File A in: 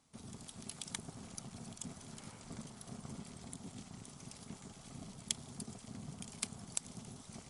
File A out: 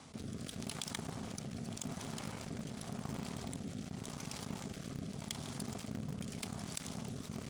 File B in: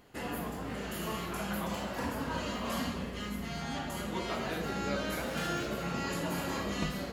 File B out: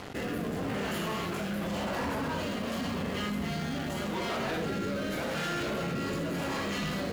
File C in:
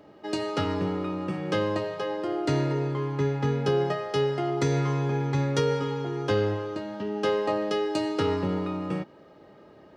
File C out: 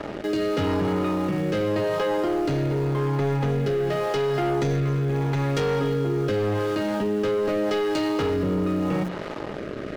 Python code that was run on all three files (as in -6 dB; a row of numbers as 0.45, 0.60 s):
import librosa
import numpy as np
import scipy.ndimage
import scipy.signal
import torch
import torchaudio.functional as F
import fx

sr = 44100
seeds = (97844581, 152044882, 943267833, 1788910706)

p1 = scipy.signal.sosfilt(scipy.signal.butter(2, 58.0, 'highpass', fs=sr, output='sos'), x)
p2 = fx.high_shelf(p1, sr, hz=7200.0, db=-12.0)
p3 = fx.hum_notches(p2, sr, base_hz=60, count=6)
p4 = fx.leveller(p3, sr, passes=3)
p5 = fx.rotary(p4, sr, hz=0.85)
p6 = np.where(np.abs(p5) >= 10.0 ** (-30.5 / 20.0), p5, 0.0)
p7 = p5 + F.gain(torch.from_numpy(p6), -6.0).numpy()
p8 = fx.env_flatten(p7, sr, amount_pct=70)
y = F.gain(torch.from_numpy(p8), -8.5).numpy()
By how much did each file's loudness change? +3.5, +3.0, +3.0 LU